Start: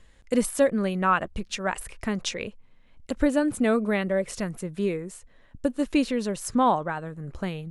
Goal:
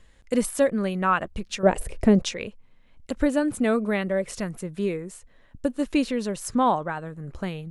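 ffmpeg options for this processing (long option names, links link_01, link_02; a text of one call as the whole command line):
ffmpeg -i in.wav -filter_complex "[0:a]asettb=1/sr,asplit=3[link_01][link_02][link_03];[link_01]atrim=end=1.634[link_04];[link_02]atrim=start=1.63:end=2.22,asetpts=PTS-STARTPTS,afade=type=in:duration=0.004:curve=qsin,afade=type=out:start_time=0.586:duration=0.004:curve=qsin,lowshelf=frequency=790:width_type=q:width=1.5:gain=10.5[link_05];[link_03]atrim=start=2.216[link_06];[link_04][link_05]acrossfade=duration=0.004:curve1=hsin:curve2=qsin[link_07];[link_07][link_06]acrossfade=duration=0.004:curve1=qsin:curve2=hsin" out.wav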